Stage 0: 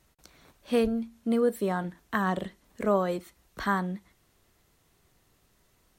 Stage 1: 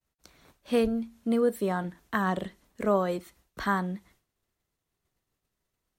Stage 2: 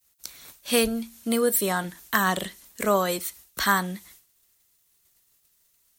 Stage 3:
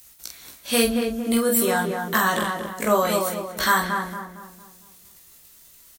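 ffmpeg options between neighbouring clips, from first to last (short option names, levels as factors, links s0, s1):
-af "agate=range=0.0224:threshold=0.00178:ratio=3:detection=peak"
-filter_complex "[0:a]acrossover=split=1900[s0][s1];[s1]asoftclip=type=hard:threshold=0.0299[s2];[s0][s2]amix=inputs=2:normalize=0,crystalizer=i=9.5:c=0"
-filter_complex "[0:a]asplit=2[s0][s1];[s1]aecho=0:1:18|47:0.668|0.531[s2];[s0][s2]amix=inputs=2:normalize=0,acompressor=mode=upward:threshold=0.0126:ratio=2.5,asplit=2[s3][s4];[s4]adelay=228,lowpass=f=1500:p=1,volume=0.631,asplit=2[s5][s6];[s6]adelay=228,lowpass=f=1500:p=1,volume=0.45,asplit=2[s7][s8];[s8]adelay=228,lowpass=f=1500:p=1,volume=0.45,asplit=2[s9][s10];[s10]adelay=228,lowpass=f=1500:p=1,volume=0.45,asplit=2[s11][s12];[s12]adelay=228,lowpass=f=1500:p=1,volume=0.45,asplit=2[s13][s14];[s14]adelay=228,lowpass=f=1500:p=1,volume=0.45[s15];[s5][s7][s9][s11][s13][s15]amix=inputs=6:normalize=0[s16];[s3][s16]amix=inputs=2:normalize=0"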